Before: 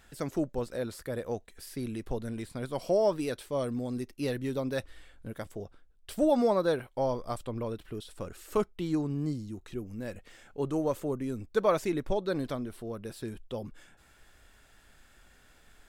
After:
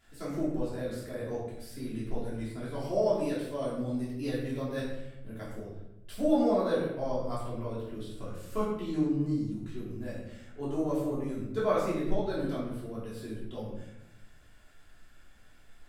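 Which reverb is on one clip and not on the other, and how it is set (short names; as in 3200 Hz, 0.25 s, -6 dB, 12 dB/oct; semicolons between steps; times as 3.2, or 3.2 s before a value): shoebox room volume 310 m³, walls mixed, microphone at 3.1 m; gain -11 dB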